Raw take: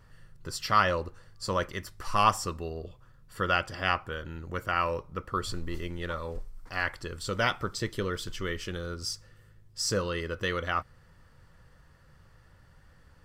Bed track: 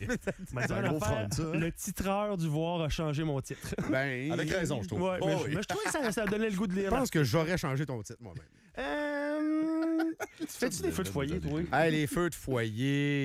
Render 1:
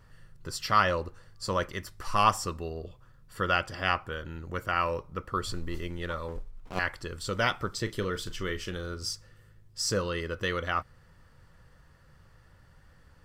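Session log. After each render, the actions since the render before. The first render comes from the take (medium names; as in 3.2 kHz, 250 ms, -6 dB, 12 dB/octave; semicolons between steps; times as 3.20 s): 6.28–6.79 s: sliding maximum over 17 samples; 7.82–9.12 s: doubling 38 ms -13 dB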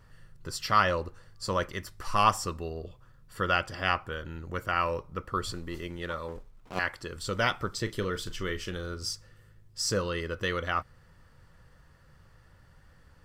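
5.51–7.16 s: bass shelf 65 Hz -11 dB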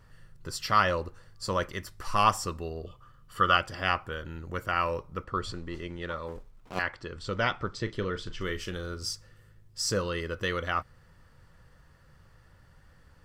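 2.86–3.57 s: small resonant body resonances 1.2/3 kHz, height 17 dB; 5.24–6.27 s: distance through air 67 m; 6.82–8.41 s: distance through air 110 m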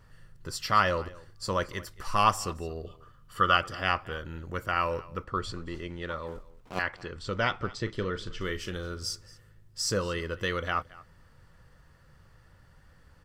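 delay 224 ms -21 dB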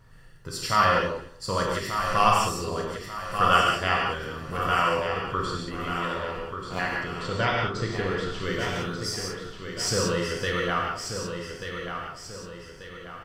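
on a send: feedback delay 1187 ms, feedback 42%, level -7.5 dB; on the sum: gated-style reverb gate 210 ms flat, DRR -2.5 dB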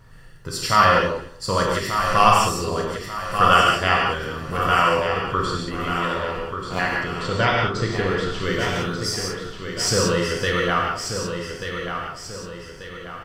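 trim +5.5 dB; peak limiter -2 dBFS, peak gain reduction 2 dB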